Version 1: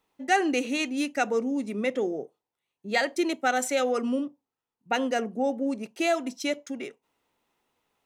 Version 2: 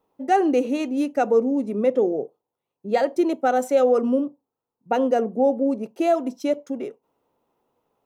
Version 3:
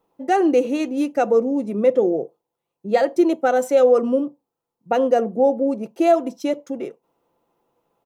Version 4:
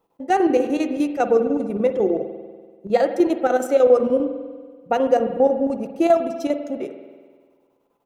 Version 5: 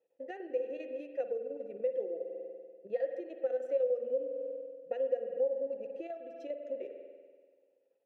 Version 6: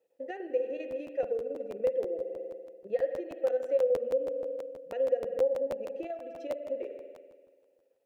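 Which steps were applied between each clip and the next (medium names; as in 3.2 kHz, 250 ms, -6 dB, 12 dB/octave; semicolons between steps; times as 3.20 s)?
graphic EQ 125/250/500/1000/2000/4000/8000 Hz +5/+3/+8/+4/-8/-5/-7 dB
comb 5.9 ms, depth 32%; trim +2 dB
square tremolo 10 Hz, depth 60%, duty 70%; spring tank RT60 1.6 s, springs 48 ms, chirp 40 ms, DRR 8.5 dB
compression 4:1, threshold -28 dBFS, peak gain reduction 15.5 dB; vowel filter e
crackling interface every 0.16 s, samples 512, repeat, from 0.90 s; trim +4 dB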